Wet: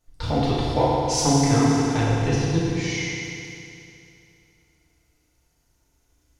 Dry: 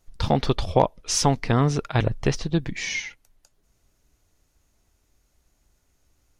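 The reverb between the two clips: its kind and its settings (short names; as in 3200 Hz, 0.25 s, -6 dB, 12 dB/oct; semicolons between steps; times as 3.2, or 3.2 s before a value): FDN reverb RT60 2.7 s, high-frequency decay 0.95×, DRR -8 dB; gain -7.5 dB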